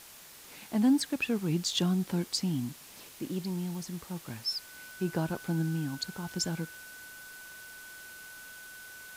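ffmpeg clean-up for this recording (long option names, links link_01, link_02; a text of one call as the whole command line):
ffmpeg -i in.wav -af "adeclick=threshold=4,bandreject=frequency=1500:width=30,afwtdn=0.0032" out.wav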